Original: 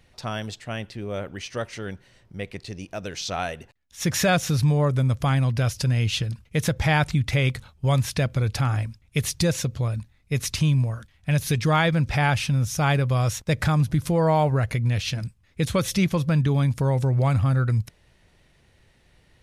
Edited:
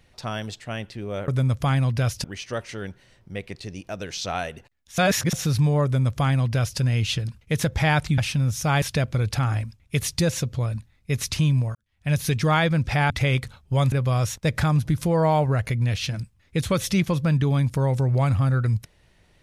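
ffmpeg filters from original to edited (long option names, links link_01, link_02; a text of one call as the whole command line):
ffmpeg -i in.wav -filter_complex "[0:a]asplit=10[link_01][link_02][link_03][link_04][link_05][link_06][link_07][link_08][link_09][link_10];[link_01]atrim=end=1.282[link_11];[link_02]atrim=start=4.878:end=5.842[link_12];[link_03]atrim=start=1.278:end=4.022[link_13];[link_04]atrim=start=4.018:end=4.372,asetpts=PTS-STARTPTS,areverse[link_14];[link_05]atrim=start=4.368:end=7.222[link_15];[link_06]atrim=start=12.318:end=12.962[link_16];[link_07]atrim=start=8.038:end=10.97,asetpts=PTS-STARTPTS,afade=type=out:start_time=2.928:duration=0.004:curve=hsin[link_17];[link_08]atrim=start=10.97:end=12.322,asetpts=PTS-STARTPTS,afade=type=in:duration=0.37:curve=qua[link_18];[link_09]atrim=start=7.218:end=8.042[link_19];[link_10]atrim=start=12.958[link_20];[link_11][link_12]acrossfade=duration=0.004:curve1=hsin:curve2=hsin[link_21];[link_21][link_13]acrossfade=duration=0.004:curve1=hsin:curve2=hsin[link_22];[link_22][link_14]acrossfade=duration=0.004:curve1=hsin:curve2=hsin[link_23];[link_23][link_15]acrossfade=duration=0.004:curve1=hsin:curve2=hsin[link_24];[link_24][link_16]acrossfade=duration=0.004:curve1=hsin:curve2=hsin[link_25];[link_17][link_18]concat=n=2:v=0:a=1[link_26];[link_25][link_26]acrossfade=duration=0.004:curve1=hsin:curve2=hsin[link_27];[link_27][link_19]acrossfade=duration=0.004:curve1=hsin:curve2=hsin[link_28];[link_28][link_20]acrossfade=duration=0.004:curve1=hsin:curve2=hsin" out.wav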